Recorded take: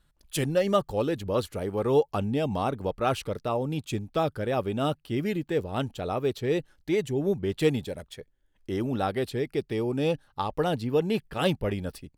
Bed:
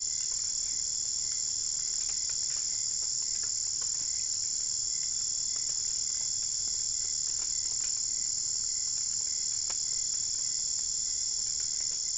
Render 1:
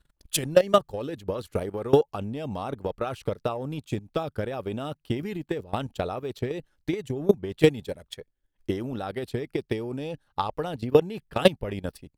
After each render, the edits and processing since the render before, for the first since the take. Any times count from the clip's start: level held to a coarse grid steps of 11 dB; transient shaper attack +11 dB, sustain -2 dB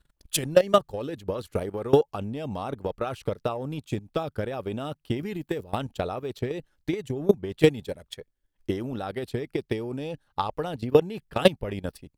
5.36–5.76 s: treble shelf 9.4 kHz +10.5 dB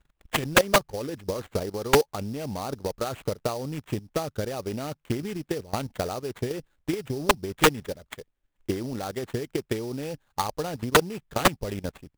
sample-rate reducer 5.3 kHz, jitter 20%; integer overflow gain 9 dB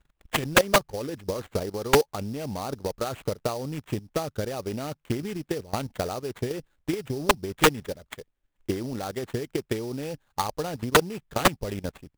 no audible change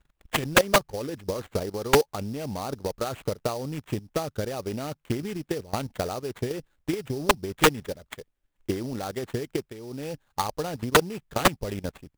9.70–10.10 s: fade in, from -16.5 dB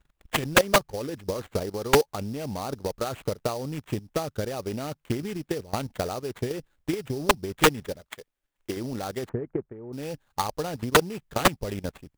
8.01–8.77 s: bass shelf 290 Hz -10 dB; 9.29–9.93 s: Bessel low-pass 1.1 kHz, order 6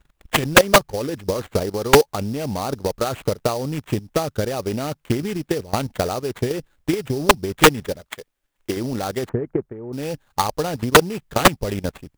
trim +7 dB

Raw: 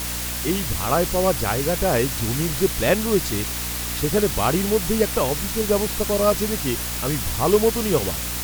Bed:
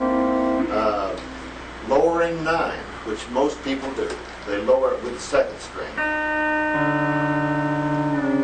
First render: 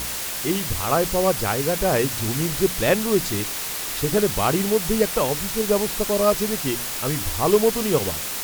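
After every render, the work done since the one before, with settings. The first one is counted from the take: de-hum 60 Hz, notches 5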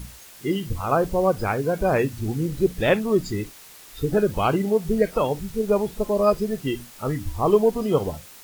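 noise print and reduce 17 dB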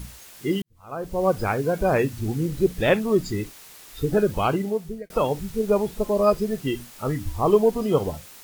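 0.62–1.30 s: fade in quadratic; 4.18–5.10 s: fade out equal-power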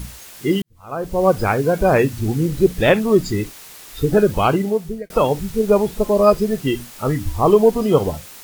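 trim +6 dB; peak limiter -2 dBFS, peak gain reduction 2.5 dB

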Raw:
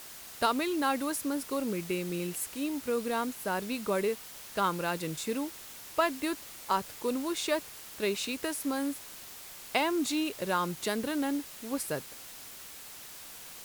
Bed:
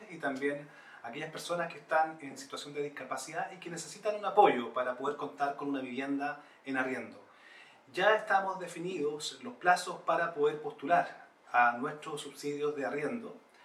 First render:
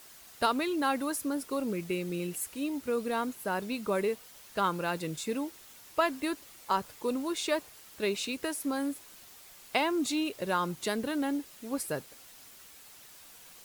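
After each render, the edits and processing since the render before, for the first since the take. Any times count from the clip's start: noise reduction 7 dB, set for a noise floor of -47 dBFS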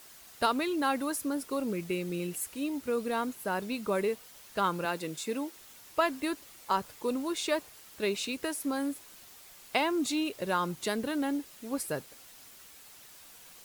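4.85–5.57 s: high-pass 200 Hz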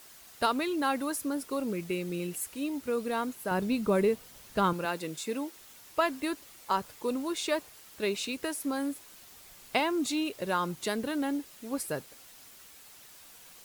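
3.51–4.73 s: bass shelf 330 Hz +10.5 dB; 9.32–9.80 s: bass shelf 240 Hz +7 dB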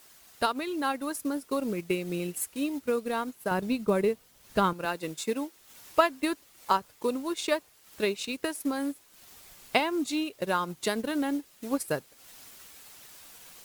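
transient shaper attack +4 dB, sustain -8 dB; gain riding 2 s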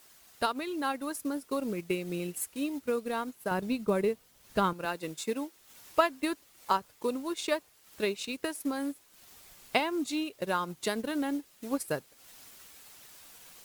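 trim -2.5 dB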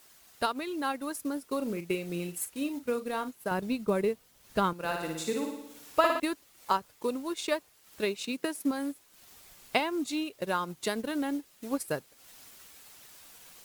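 1.56–3.29 s: doubling 41 ms -11.5 dB; 4.75–6.20 s: flutter echo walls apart 9.7 m, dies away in 0.84 s; 8.23–8.71 s: resonant high-pass 180 Hz, resonance Q 2.1

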